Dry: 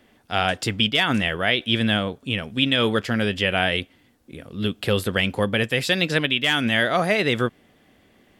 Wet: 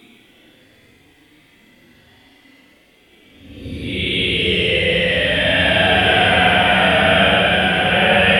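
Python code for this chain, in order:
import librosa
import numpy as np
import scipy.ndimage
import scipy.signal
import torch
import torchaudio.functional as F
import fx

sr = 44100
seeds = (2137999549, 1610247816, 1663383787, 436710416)

y = x[::-1].copy()
y = fx.echo_thinned(y, sr, ms=115, feedback_pct=42, hz=420.0, wet_db=-3)
y = fx.paulstretch(y, sr, seeds[0], factor=13.0, window_s=0.05, from_s=4.28)
y = y * librosa.db_to_amplitude(6.0)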